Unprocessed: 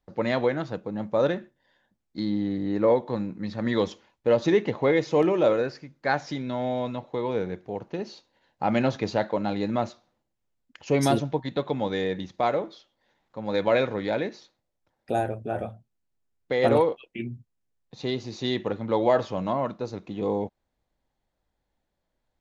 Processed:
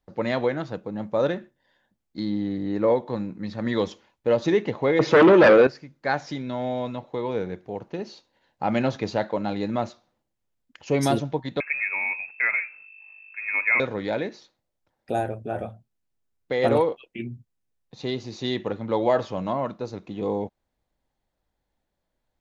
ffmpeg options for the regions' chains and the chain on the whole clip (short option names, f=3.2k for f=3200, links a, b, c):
-filter_complex "[0:a]asettb=1/sr,asplit=3[a][b][c];[a]atrim=end=4.994[d];[b]atrim=start=4.99:end=5.67,asetpts=PTS-STARTPTS,afade=t=in:d=0.004:c=qsin,afade=t=out:st=0.676:d=0.004:c=qsin,aeval=exprs='0.316*sin(PI/2*2.82*val(0)/0.316)':c=same,highpass=140,lowpass=5k,adynamicequalizer=threshold=0.0282:dfrequency=2800:dqfactor=0.7:tfrequency=2800:tqfactor=0.7:attack=5:release=100:ratio=0.375:range=2.5:mode=cutabove:tftype=highshelf[e];[c]atrim=start=5.666[f];[d][e]acrossfade=d=0.004:c1=hsin:c2=qsin[g];[g][f]acrossfade=d=0.004:c1=qsin:c2=hsin,asettb=1/sr,asplit=3[h][i][j];[h]atrim=end=11.604[k];[i]atrim=start=11.6:end=13.8,asetpts=PTS-STARTPTS,afade=t=in:d=0.004:c=qsin,afade=t=out:st=2.196:d=0.004:c=qsin,aeval=exprs='val(0)+0.00447*(sin(2*PI*50*n/s)+sin(2*PI*2*50*n/s)/2+sin(2*PI*3*50*n/s)/3+sin(2*PI*4*50*n/s)/4+sin(2*PI*5*50*n/s)/5)':c=same,lowpass=f=2.3k:t=q:w=0.5098,lowpass=f=2.3k:t=q:w=0.6013,lowpass=f=2.3k:t=q:w=0.9,lowpass=f=2.3k:t=q:w=2.563,afreqshift=-2700[l];[j]atrim=start=13.796[m];[k][l]acrossfade=d=0.004:c1=hsin:c2=qsin[n];[n][m]acrossfade=d=0.004:c1=qsin:c2=hsin"